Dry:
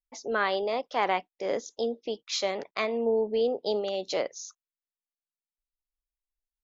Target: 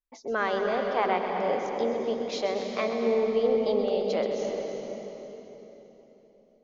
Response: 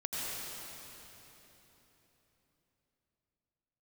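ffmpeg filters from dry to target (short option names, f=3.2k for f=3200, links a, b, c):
-filter_complex "[0:a]lowpass=f=2.2k:p=1,asplit=2[a][b];[1:a]atrim=start_sample=2205,lowshelf=f=210:g=11.5,adelay=129[c];[b][c]afir=irnorm=-1:irlink=0,volume=-7dB[d];[a][d]amix=inputs=2:normalize=0"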